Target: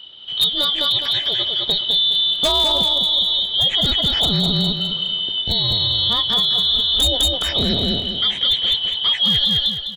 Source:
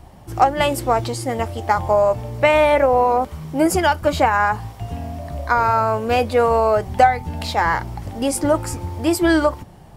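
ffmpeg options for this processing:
ffmpeg -i in.wav -filter_complex "[0:a]afftfilt=real='real(if(lt(b,272),68*(eq(floor(b/68),0)*1+eq(floor(b/68),1)*3+eq(floor(b/68),2)*0+eq(floor(b/68),3)*2)+mod(b,68),b),0)':imag='imag(if(lt(b,272),68*(eq(floor(b/68),0)*1+eq(floor(b/68),1)*3+eq(floor(b/68),2)*0+eq(floor(b/68),3)*2)+mod(b,68),b),0)':win_size=2048:overlap=0.75,lowpass=frequency=3800:width=0.5412,lowpass=frequency=3800:width=1.3066,equalizer=frequency=280:width_type=o:width=0.38:gain=-3.5,acrossover=split=600|1100[link_01][link_02][link_03];[link_01]dynaudnorm=framelen=220:gausssize=21:maxgain=6.5dB[link_04];[link_04][link_02][link_03]amix=inputs=3:normalize=0,aeval=exprs='0.355*(abs(mod(val(0)/0.355+3,4)-2)-1)':channel_layout=same,asplit=2[link_05][link_06];[link_06]aecho=0:1:206|412|618|824:0.631|0.208|0.0687|0.0227[link_07];[link_05][link_07]amix=inputs=2:normalize=0,alimiter=level_in=12dB:limit=-1dB:release=50:level=0:latency=1,volume=-8.5dB" out.wav

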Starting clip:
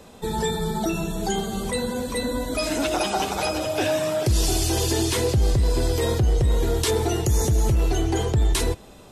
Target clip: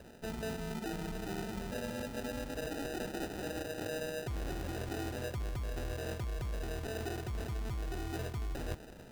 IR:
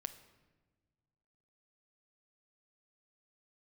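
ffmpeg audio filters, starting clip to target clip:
-af "areverse,acompressor=threshold=-31dB:ratio=6,areverse,acrusher=samples=40:mix=1:aa=0.000001,volume=-5.5dB"

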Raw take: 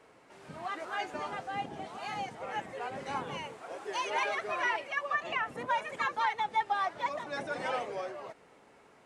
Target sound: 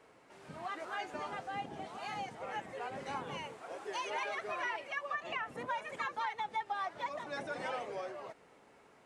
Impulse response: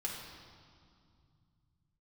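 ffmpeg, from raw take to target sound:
-af "acompressor=threshold=-34dB:ratio=2,volume=-2.5dB"

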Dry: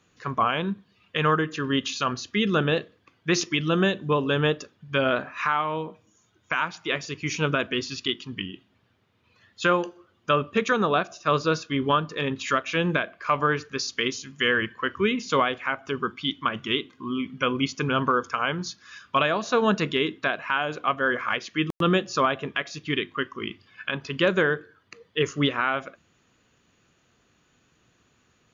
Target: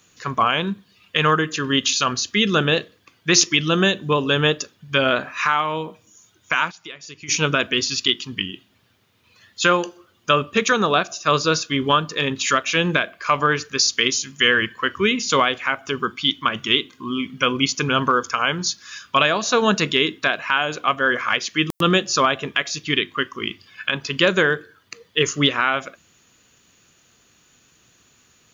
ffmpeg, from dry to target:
ffmpeg -i in.wav -filter_complex "[0:a]asplit=3[link_01][link_02][link_03];[link_01]afade=type=out:start_time=6.7:duration=0.02[link_04];[link_02]acompressor=threshold=-41dB:ratio=8,afade=type=in:start_time=6.7:duration=0.02,afade=type=out:start_time=7.28:duration=0.02[link_05];[link_03]afade=type=in:start_time=7.28:duration=0.02[link_06];[link_04][link_05][link_06]amix=inputs=3:normalize=0,crystalizer=i=3.5:c=0,volume=3dB" out.wav

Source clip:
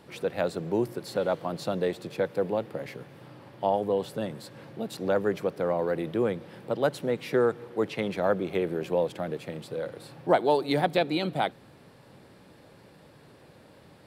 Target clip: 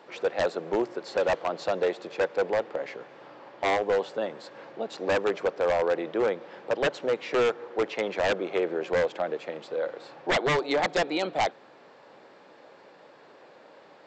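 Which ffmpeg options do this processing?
ffmpeg -i in.wav -af "highpass=520,equalizer=frequency=5900:width=0.37:gain=-9,aresample=16000,aeval=exprs='0.0531*(abs(mod(val(0)/0.0531+3,4)-2)-1)':channel_layout=same,aresample=44100,volume=7.5dB" out.wav

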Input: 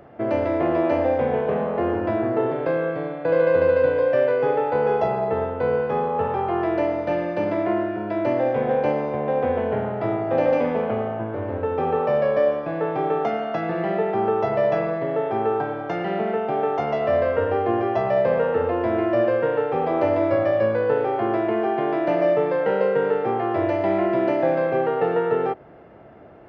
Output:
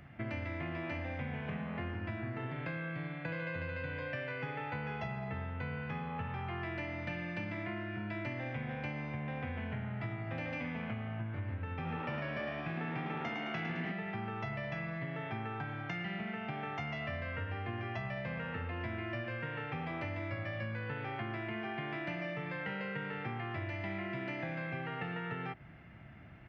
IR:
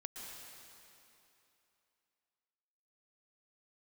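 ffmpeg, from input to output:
-filter_complex "[0:a]firequalizer=gain_entry='entry(140,0);entry(440,-24);entry(680,-17);entry(2100,2);entry(3900,-4)':delay=0.05:min_phase=1,acompressor=threshold=-37dB:ratio=6,asettb=1/sr,asplit=3[link_01][link_02][link_03];[link_01]atrim=end=11.744[link_04];[link_02]atrim=start=11.74:end=13.92,asetpts=PTS-STARTPTS,afade=type=in:duration=0.004:curve=qsin,afade=type=out:start_time=2.176:duration=0.004:curve=qsin,asplit=8[link_05][link_06][link_07][link_08][link_09][link_10][link_11][link_12];[link_06]adelay=107,afreqshift=75,volume=-6dB[link_13];[link_07]adelay=214,afreqshift=150,volume=-11.4dB[link_14];[link_08]adelay=321,afreqshift=225,volume=-16.7dB[link_15];[link_09]adelay=428,afreqshift=300,volume=-22.1dB[link_16];[link_10]adelay=535,afreqshift=375,volume=-27.4dB[link_17];[link_11]adelay=642,afreqshift=450,volume=-32.8dB[link_18];[link_12]adelay=749,afreqshift=525,volume=-38.1dB[link_19];[link_05][link_13][link_14][link_15][link_16][link_17][link_18][link_19]amix=inputs=8:normalize=0,atrim=end_sample=96138[link_20];[link_03]atrim=start=13.916[link_21];[link_04][link_20]acrossfade=duration=0.004:curve1=hsin:curve2=qsin[link_22];[link_22][link_21]acrossfade=duration=0.004:curve1=qsin:curve2=hsin,volume=1dB"

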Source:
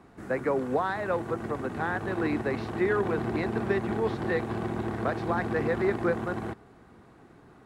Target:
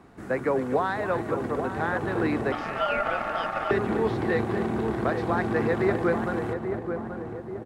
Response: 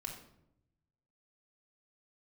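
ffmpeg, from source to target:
-filter_complex "[0:a]asplit=2[link_01][link_02];[link_02]adelay=833,lowpass=frequency=1100:poles=1,volume=-6dB,asplit=2[link_03][link_04];[link_04]adelay=833,lowpass=frequency=1100:poles=1,volume=0.54,asplit=2[link_05][link_06];[link_06]adelay=833,lowpass=frequency=1100:poles=1,volume=0.54,asplit=2[link_07][link_08];[link_08]adelay=833,lowpass=frequency=1100:poles=1,volume=0.54,asplit=2[link_09][link_10];[link_10]adelay=833,lowpass=frequency=1100:poles=1,volume=0.54,asplit=2[link_11][link_12];[link_12]adelay=833,lowpass=frequency=1100:poles=1,volume=0.54,asplit=2[link_13][link_14];[link_14]adelay=833,lowpass=frequency=1100:poles=1,volume=0.54[link_15];[link_03][link_05][link_07][link_09][link_11][link_13][link_15]amix=inputs=7:normalize=0[link_16];[link_01][link_16]amix=inputs=2:normalize=0,asettb=1/sr,asplit=3[link_17][link_18][link_19];[link_17]atrim=end=2.524[link_20];[link_18]atrim=start=2.52:end=3.71,asetpts=PTS-STARTPTS,afade=type=in:duration=0.004:curve=qsin,afade=type=out:start_time=1.186:duration=0.004:curve=qsin,aeval=exprs='val(0)*sin(2*PI*1000*n/s)':channel_layout=same[link_21];[link_19]atrim=start=3.706[link_22];[link_20][link_21]acrossfade=duration=0.004:curve1=hsin:curve2=qsin[link_23];[link_23][link_22]acrossfade=duration=0.004:curve1=qsin:curve2=hsin,asplit=2[link_24][link_25];[link_25]aecho=0:1:249:0.237[link_26];[link_24][link_26]amix=inputs=2:normalize=0,volume=2dB"

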